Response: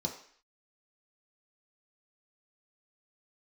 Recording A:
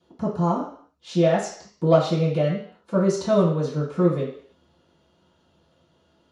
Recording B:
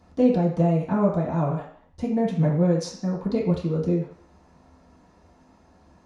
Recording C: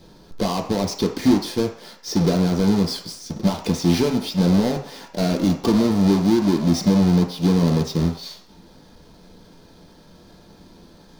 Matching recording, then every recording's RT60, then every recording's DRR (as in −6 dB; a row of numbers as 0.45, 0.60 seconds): C; 0.55, 0.55, 0.55 seconds; −14.5, −8.5, 0.0 decibels